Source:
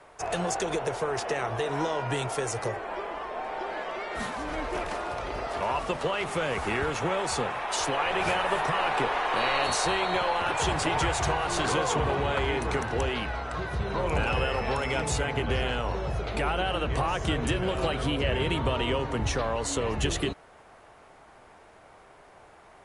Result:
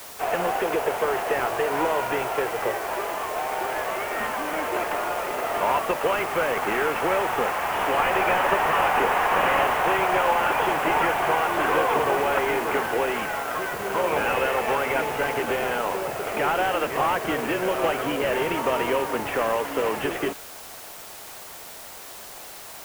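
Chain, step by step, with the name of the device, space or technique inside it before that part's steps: army field radio (BPF 340–2900 Hz; CVSD 16 kbps; white noise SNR 17 dB); gain +7 dB

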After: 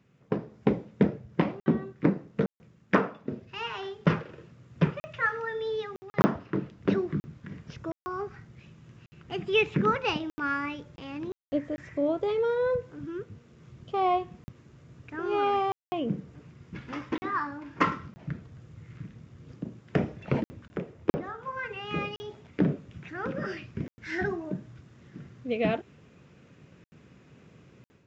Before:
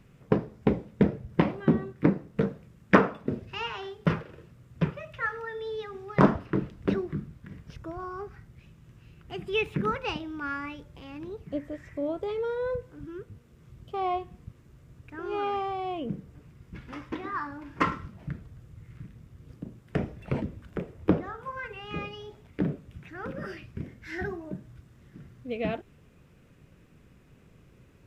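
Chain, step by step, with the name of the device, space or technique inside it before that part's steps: call with lost packets (HPF 110 Hz 12 dB/oct; downsampling 16000 Hz; AGC gain up to 10.5 dB; packet loss bursts); gain -6.5 dB

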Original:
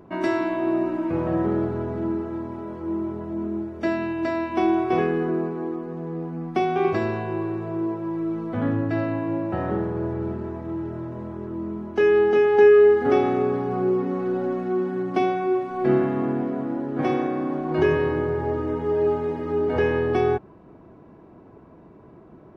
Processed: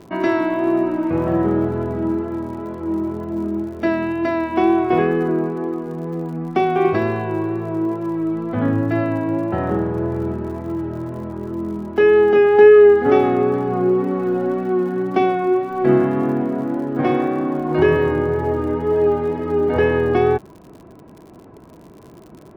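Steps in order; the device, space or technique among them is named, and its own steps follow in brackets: lo-fi chain (LPF 4200 Hz 12 dB/oct; wow and flutter 25 cents; crackle 74/s -41 dBFS); gain +5 dB

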